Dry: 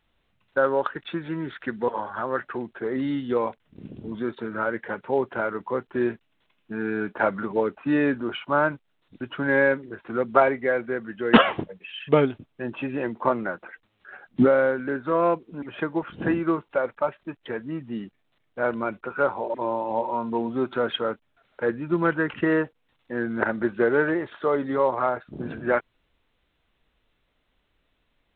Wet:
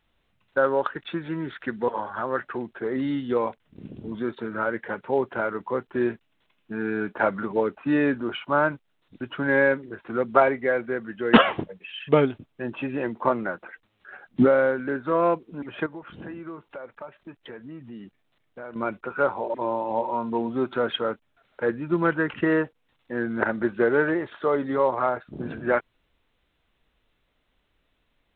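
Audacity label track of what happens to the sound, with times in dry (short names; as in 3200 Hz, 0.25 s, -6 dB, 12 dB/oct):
15.860000	18.760000	compressor 3:1, threshold -39 dBFS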